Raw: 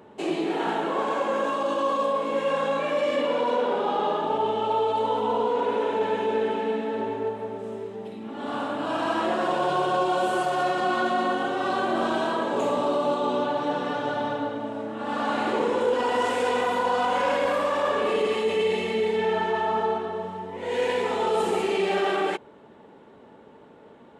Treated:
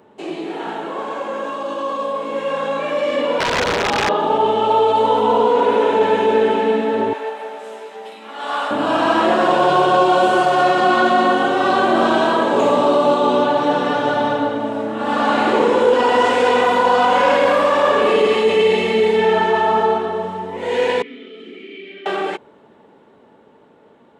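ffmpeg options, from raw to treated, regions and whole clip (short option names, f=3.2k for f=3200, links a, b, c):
-filter_complex "[0:a]asettb=1/sr,asplit=3[a][b][c];[a]atrim=end=3.394[d];[b]atrim=start=3.39:end=4.09,asetpts=PTS-STARTPTS,afade=t=in:d=0.004:c=qsin,afade=t=out:st=0.696:d=0.004:c=qsin,bandreject=f=60:t=h:w=6,bandreject=f=120:t=h:w=6,bandreject=f=180:t=h:w=6,bandreject=f=240:t=h:w=6,bandreject=f=300:t=h:w=6,aeval=exprs='(mod(8.91*val(0)+1,2)-1)/8.91':c=same[e];[c]atrim=start=4.086[f];[d][e]acrossfade=d=0.004:c1=hsin:c2=qsin[g];[g][f]acrossfade=d=0.004:c1=qsin:c2=hsin,asettb=1/sr,asplit=3[h][i][j];[h]atrim=end=7.134[k];[i]atrim=start=7.13:end=8.71,asetpts=PTS-STARTPTS,afade=t=in:d=0.004:c=qsin,afade=t=out:st=1.576:d=0.004:c=qsin,highpass=810,asplit=2[l][m];[m]adelay=14,volume=-3.5dB[n];[l][n]amix=inputs=2:normalize=0,atrim=end_sample=69678[o];[j]atrim=start=8.706[p];[k][o]acrossfade=d=0.004:c1=hsin:c2=qsin[q];[q][p]acrossfade=d=0.004:c1=qsin:c2=hsin,asettb=1/sr,asplit=3[r][s][t];[r]atrim=end=21.024[u];[s]atrim=start=21.02:end=22.06,asetpts=PTS-STARTPTS,afade=t=in:d=0.004:c=qsin,afade=t=out:st=1.036:d=0.004:c=qsin,asplit=3[v][w][x];[v]bandpass=f=270:t=q:w=8,volume=0dB[y];[w]bandpass=f=2.29k:t=q:w=8,volume=-6dB[z];[x]bandpass=f=3.01k:t=q:w=8,volume=-9dB[aa];[y][z][aa]amix=inputs=3:normalize=0,acrossover=split=160 5100:gain=0.0891 1 0.2[ab][ac][ad];[ab][ac][ad]amix=inputs=3:normalize=0[ae];[t]atrim=start=22.056[af];[u][ae]acrossfade=d=0.004:c1=hsin:c2=qsin[ag];[ag][af]acrossfade=d=0.004:c1=qsin:c2=hsin,acrossover=split=6500[ah][ai];[ai]acompressor=threshold=-58dB:ratio=4:attack=1:release=60[aj];[ah][aj]amix=inputs=2:normalize=0,lowshelf=f=80:g=-6.5,dynaudnorm=f=330:g=21:m=11.5dB"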